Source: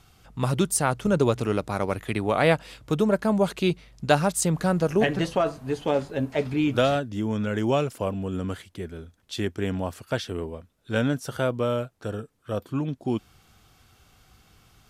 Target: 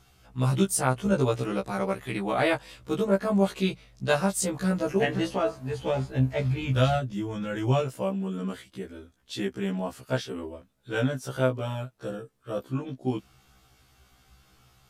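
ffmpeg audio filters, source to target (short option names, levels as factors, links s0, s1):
-filter_complex "[0:a]asplit=3[s0][s1][s2];[s0]afade=t=out:st=5.71:d=0.02[s3];[s1]asubboost=boost=4.5:cutoff=130,afade=t=in:st=5.71:d=0.02,afade=t=out:st=7.79:d=0.02[s4];[s2]afade=t=in:st=7.79:d=0.02[s5];[s3][s4][s5]amix=inputs=3:normalize=0,afftfilt=real='re*1.73*eq(mod(b,3),0)':imag='im*1.73*eq(mod(b,3),0)':win_size=2048:overlap=0.75"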